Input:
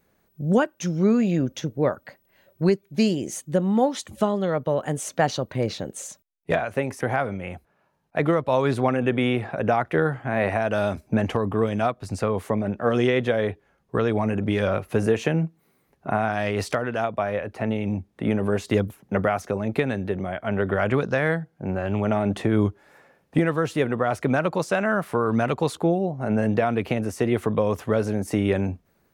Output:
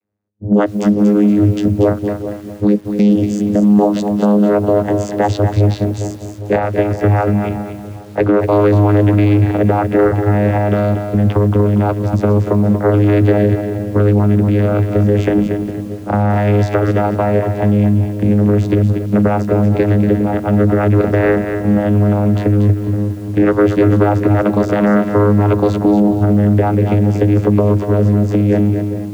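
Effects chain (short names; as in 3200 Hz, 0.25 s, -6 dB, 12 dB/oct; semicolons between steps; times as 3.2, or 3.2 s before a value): AGC gain up to 12 dB; spectral noise reduction 17 dB; darkening echo 0.405 s, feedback 49%, low-pass 1200 Hz, level -15 dB; vocoder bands 16, saw 103 Hz; 11.14–12.02 Chebyshev low-pass 5600 Hz, order 5; maximiser +11.5 dB; lo-fi delay 0.236 s, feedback 35%, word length 6-bit, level -7.5 dB; gain -3 dB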